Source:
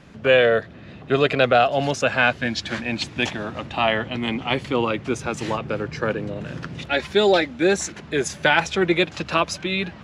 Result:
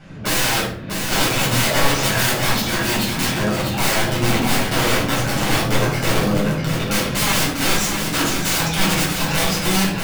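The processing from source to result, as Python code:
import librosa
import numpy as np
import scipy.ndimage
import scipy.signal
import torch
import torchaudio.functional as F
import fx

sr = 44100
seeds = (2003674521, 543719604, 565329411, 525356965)

y = (np.mod(10.0 ** (19.5 / 20.0) * x + 1.0, 2.0) - 1.0) / 10.0 ** (19.5 / 20.0)
y = y + 10.0 ** (-6.0 / 20.0) * np.pad(y, (int(644 * sr / 1000.0), 0))[:len(y)]
y = fx.room_shoebox(y, sr, seeds[0], volume_m3=730.0, walls='furnished', distance_m=7.4)
y = F.gain(torch.from_numpy(y), -3.0).numpy()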